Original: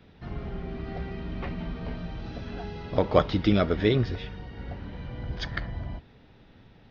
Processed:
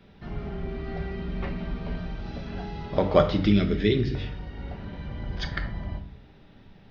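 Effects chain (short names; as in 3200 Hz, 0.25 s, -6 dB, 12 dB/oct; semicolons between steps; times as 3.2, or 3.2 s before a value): 3.46–4.15 band shelf 840 Hz -12.5 dB; shoebox room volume 670 m³, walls furnished, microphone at 1.2 m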